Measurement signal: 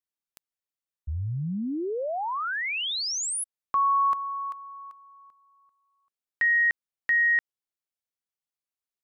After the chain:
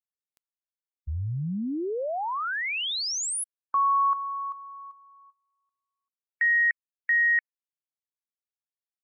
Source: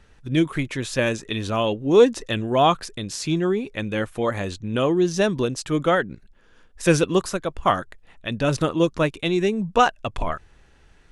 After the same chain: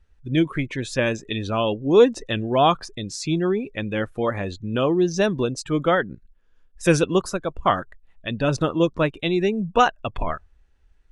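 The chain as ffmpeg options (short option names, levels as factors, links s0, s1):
-af "afftdn=nr=16:nf=-38"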